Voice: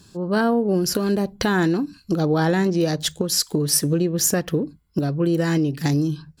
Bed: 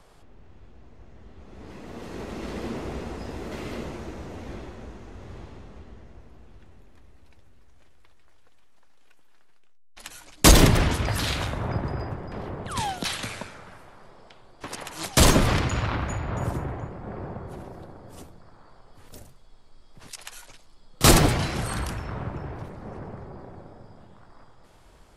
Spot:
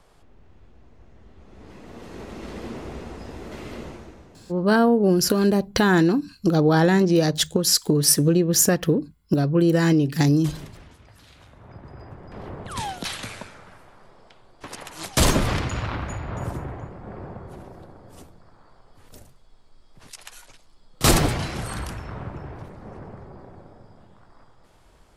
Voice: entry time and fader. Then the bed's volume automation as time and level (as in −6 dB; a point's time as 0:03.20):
4.35 s, +2.0 dB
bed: 0:03.90 −2 dB
0:04.88 −25 dB
0:11.27 −25 dB
0:12.48 −1.5 dB